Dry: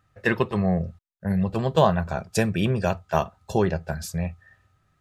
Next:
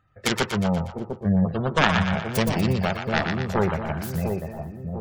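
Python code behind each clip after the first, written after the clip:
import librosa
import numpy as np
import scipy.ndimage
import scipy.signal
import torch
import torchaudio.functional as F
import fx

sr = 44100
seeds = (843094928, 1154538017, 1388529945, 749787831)

y = fx.self_delay(x, sr, depth_ms=0.84)
y = fx.spec_gate(y, sr, threshold_db=-30, keep='strong')
y = fx.echo_split(y, sr, split_hz=770.0, low_ms=699, high_ms=120, feedback_pct=52, wet_db=-5.0)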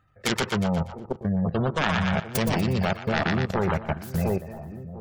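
y = fx.level_steps(x, sr, step_db=14)
y = y * librosa.db_to_amplitude(4.5)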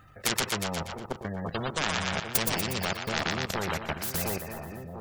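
y = fx.high_shelf(x, sr, hz=7500.0, db=5.0)
y = fx.spectral_comp(y, sr, ratio=2.0)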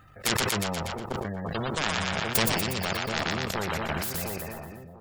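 y = fx.fade_out_tail(x, sr, length_s=1.06)
y = fx.notch(y, sr, hz=6000.0, q=21.0)
y = fx.sustainer(y, sr, db_per_s=22.0)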